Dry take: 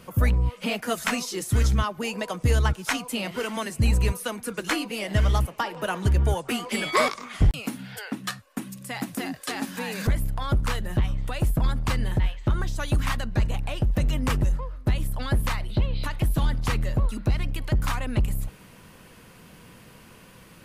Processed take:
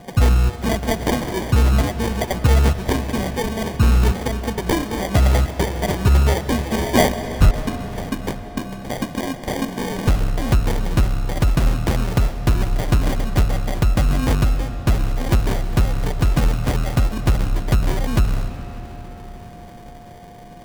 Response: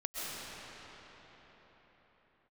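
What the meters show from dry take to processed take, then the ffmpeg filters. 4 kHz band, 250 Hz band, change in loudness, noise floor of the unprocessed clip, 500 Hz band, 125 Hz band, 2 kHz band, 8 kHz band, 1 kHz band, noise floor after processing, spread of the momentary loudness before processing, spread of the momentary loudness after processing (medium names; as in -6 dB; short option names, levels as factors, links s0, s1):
+3.5 dB, +7.5 dB, +6.0 dB, -50 dBFS, +7.5 dB, +6.5 dB, +2.5 dB, +4.0 dB, +5.5 dB, -38 dBFS, 8 LU, 10 LU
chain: -filter_complex "[0:a]acrusher=samples=33:mix=1:aa=0.000001,aeval=exprs='val(0)+0.00316*sin(2*PI*710*n/s)':c=same,asplit=2[s0][s1];[1:a]atrim=start_sample=2205[s2];[s1][s2]afir=irnorm=-1:irlink=0,volume=0.224[s3];[s0][s3]amix=inputs=2:normalize=0,volume=1.78"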